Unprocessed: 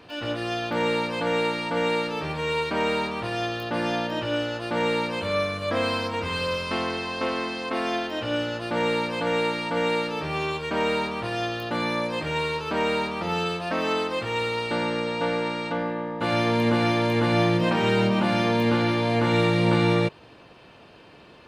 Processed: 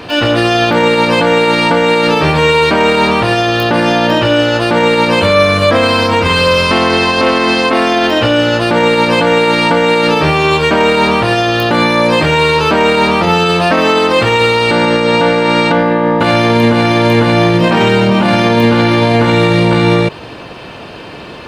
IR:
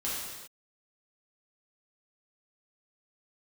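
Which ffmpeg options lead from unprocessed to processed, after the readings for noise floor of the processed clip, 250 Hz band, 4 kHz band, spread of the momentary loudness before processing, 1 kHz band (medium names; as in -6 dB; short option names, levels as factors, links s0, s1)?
-29 dBFS, +14.0 dB, +16.0 dB, 7 LU, +15.5 dB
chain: -af "alimiter=level_in=11.9:limit=0.891:release=50:level=0:latency=1,volume=0.891"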